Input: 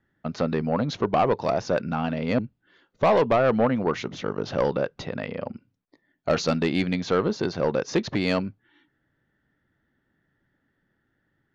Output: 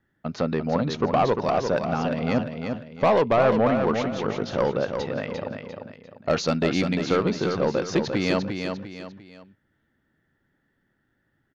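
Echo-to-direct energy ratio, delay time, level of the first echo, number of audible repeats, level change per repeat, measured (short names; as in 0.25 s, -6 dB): -5.5 dB, 0.348 s, -6.0 dB, 3, -8.5 dB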